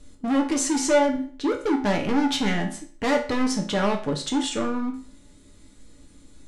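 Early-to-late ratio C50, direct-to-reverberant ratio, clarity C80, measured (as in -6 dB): 9.5 dB, 1.5 dB, 14.0 dB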